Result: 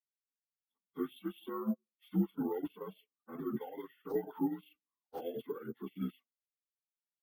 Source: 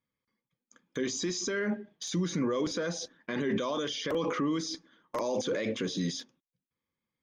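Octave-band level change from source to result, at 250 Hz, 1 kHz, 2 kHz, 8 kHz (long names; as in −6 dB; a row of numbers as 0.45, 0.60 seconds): −5.0 dB, −8.5 dB, −21.0 dB, below −35 dB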